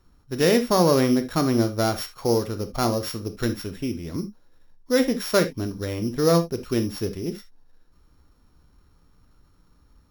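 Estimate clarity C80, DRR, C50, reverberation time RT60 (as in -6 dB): 24.0 dB, 8.0 dB, 14.0 dB, not exponential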